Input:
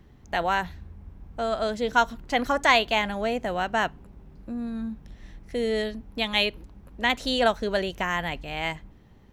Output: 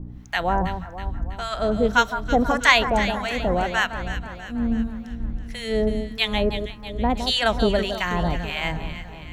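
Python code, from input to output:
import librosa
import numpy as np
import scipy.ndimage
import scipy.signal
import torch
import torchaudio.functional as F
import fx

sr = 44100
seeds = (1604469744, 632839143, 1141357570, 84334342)

y = fx.low_shelf(x, sr, hz=120.0, db=10.5)
y = fx.add_hum(y, sr, base_hz=60, snr_db=14)
y = fx.harmonic_tremolo(y, sr, hz=1.7, depth_pct=100, crossover_hz=1000.0)
y = fx.echo_alternate(y, sr, ms=162, hz=1400.0, feedback_pct=72, wet_db=-8.0)
y = y * librosa.db_to_amplitude(7.0)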